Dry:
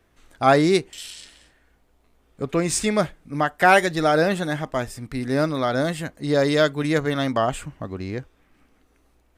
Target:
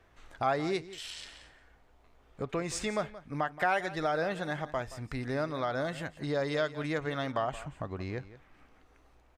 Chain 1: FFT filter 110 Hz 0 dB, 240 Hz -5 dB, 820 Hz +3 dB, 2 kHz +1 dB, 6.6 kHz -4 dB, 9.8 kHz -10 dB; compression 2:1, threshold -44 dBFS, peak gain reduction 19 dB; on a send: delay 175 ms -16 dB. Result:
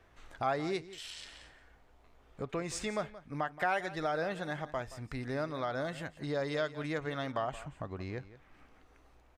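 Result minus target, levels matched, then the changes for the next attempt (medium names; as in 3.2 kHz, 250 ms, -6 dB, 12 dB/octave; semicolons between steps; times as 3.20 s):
compression: peak gain reduction +3 dB
change: compression 2:1, threshold -38 dBFS, peak gain reduction 16 dB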